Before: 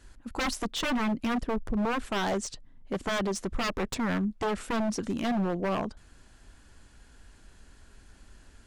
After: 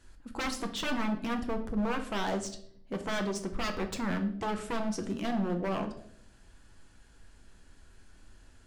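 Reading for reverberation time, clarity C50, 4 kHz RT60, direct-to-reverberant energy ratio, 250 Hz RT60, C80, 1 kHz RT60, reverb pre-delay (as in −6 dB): 0.65 s, 11.5 dB, 0.50 s, 5.5 dB, 0.85 s, 15.0 dB, 0.55 s, 6 ms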